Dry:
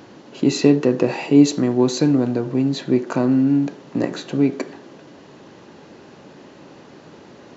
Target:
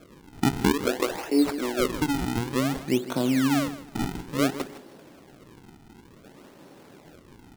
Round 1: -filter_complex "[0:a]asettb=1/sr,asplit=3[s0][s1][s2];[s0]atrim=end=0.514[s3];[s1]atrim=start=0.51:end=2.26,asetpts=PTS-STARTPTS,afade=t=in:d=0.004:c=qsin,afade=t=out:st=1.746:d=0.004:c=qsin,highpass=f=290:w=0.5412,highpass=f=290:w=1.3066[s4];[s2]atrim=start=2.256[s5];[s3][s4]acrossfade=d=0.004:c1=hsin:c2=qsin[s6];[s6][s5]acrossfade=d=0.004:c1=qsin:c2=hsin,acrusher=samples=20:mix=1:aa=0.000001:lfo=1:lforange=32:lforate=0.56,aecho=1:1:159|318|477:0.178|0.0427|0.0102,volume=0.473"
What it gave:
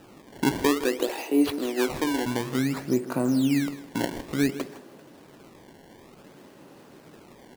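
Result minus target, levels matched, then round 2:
decimation with a swept rate: distortion -9 dB
-filter_complex "[0:a]asettb=1/sr,asplit=3[s0][s1][s2];[s0]atrim=end=0.514[s3];[s1]atrim=start=0.51:end=2.26,asetpts=PTS-STARTPTS,afade=t=in:d=0.004:c=qsin,afade=t=out:st=1.746:d=0.004:c=qsin,highpass=f=290:w=0.5412,highpass=f=290:w=1.3066[s4];[s2]atrim=start=2.256[s5];[s3][s4]acrossfade=d=0.004:c1=hsin:c2=qsin[s6];[s6][s5]acrossfade=d=0.004:c1=qsin:c2=hsin,acrusher=samples=45:mix=1:aa=0.000001:lfo=1:lforange=72:lforate=0.56,aecho=1:1:159|318|477:0.178|0.0427|0.0102,volume=0.473"

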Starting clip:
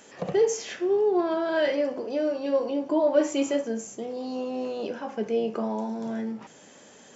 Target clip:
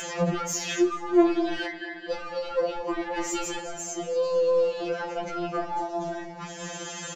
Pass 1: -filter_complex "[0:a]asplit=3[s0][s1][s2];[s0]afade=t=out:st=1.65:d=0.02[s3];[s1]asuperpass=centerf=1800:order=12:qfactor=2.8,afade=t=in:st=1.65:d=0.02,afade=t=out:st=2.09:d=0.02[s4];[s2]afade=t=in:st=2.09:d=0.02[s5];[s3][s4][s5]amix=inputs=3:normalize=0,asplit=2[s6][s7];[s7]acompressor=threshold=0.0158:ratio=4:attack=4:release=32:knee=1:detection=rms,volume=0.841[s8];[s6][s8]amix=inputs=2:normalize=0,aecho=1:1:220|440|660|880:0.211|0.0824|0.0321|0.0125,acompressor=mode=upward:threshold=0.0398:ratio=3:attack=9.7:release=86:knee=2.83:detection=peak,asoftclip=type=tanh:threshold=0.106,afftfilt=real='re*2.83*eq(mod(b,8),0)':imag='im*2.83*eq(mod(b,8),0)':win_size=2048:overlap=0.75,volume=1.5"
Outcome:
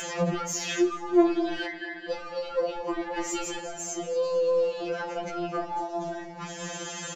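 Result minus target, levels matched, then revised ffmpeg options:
compression: peak gain reduction +7.5 dB
-filter_complex "[0:a]asplit=3[s0][s1][s2];[s0]afade=t=out:st=1.65:d=0.02[s3];[s1]asuperpass=centerf=1800:order=12:qfactor=2.8,afade=t=in:st=1.65:d=0.02,afade=t=out:st=2.09:d=0.02[s4];[s2]afade=t=in:st=2.09:d=0.02[s5];[s3][s4][s5]amix=inputs=3:normalize=0,asplit=2[s6][s7];[s7]acompressor=threshold=0.0501:ratio=4:attack=4:release=32:knee=1:detection=rms,volume=0.841[s8];[s6][s8]amix=inputs=2:normalize=0,aecho=1:1:220|440|660|880:0.211|0.0824|0.0321|0.0125,acompressor=mode=upward:threshold=0.0398:ratio=3:attack=9.7:release=86:knee=2.83:detection=peak,asoftclip=type=tanh:threshold=0.106,afftfilt=real='re*2.83*eq(mod(b,8),0)':imag='im*2.83*eq(mod(b,8),0)':win_size=2048:overlap=0.75,volume=1.5"

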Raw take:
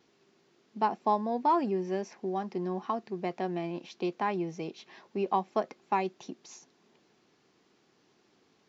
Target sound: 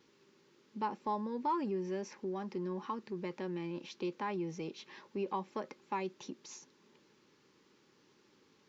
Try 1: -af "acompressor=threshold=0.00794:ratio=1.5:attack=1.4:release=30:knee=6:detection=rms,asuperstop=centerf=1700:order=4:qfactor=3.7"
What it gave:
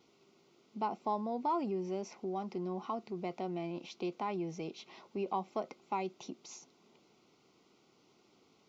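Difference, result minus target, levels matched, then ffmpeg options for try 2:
2 kHz band -3.5 dB
-af "acompressor=threshold=0.00794:ratio=1.5:attack=1.4:release=30:knee=6:detection=rms,asuperstop=centerf=700:order=4:qfactor=3.7"

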